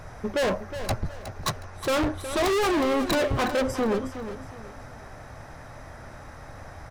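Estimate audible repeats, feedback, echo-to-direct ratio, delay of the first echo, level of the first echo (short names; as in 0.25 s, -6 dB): 3, 32%, -10.5 dB, 0.365 s, -11.0 dB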